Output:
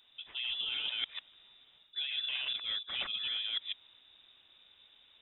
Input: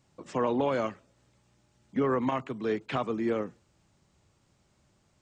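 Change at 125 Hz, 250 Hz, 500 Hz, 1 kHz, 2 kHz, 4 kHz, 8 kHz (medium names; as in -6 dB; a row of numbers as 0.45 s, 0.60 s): under -25 dB, under -35 dB, -32.0 dB, -21.0 dB, +0.5 dB, +18.0 dB, no reading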